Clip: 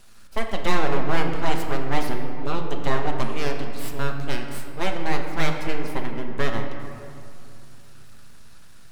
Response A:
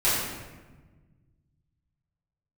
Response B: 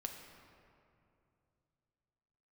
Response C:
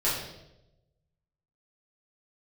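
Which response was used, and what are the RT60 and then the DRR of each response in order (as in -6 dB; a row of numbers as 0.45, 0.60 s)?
B; 1.3, 2.6, 0.90 s; -12.5, 2.5, -9.5 dB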